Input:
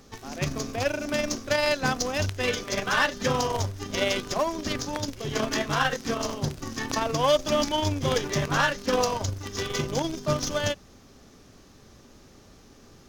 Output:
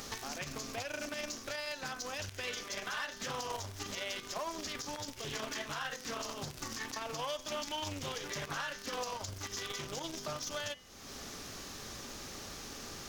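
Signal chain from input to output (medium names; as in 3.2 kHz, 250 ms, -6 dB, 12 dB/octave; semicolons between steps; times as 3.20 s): tilt shelf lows -5.5 dB, about 660 Hz; compression 3:1, threshold -47 dBFS, peak gain reduction 23 dB; treble shelf 11 kHz +6.5 dB; de-hum 127.1 Hz, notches 28; peak limiter -34.5 dBFS, peak gain reduction 11 dB; loudspeaker Doppler distortion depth 0.57 ms; trim +7 dB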